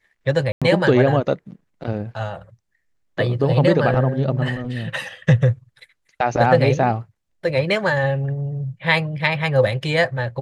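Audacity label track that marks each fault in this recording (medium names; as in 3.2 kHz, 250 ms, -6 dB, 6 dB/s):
0.520000	0.620000	dropout 96 ms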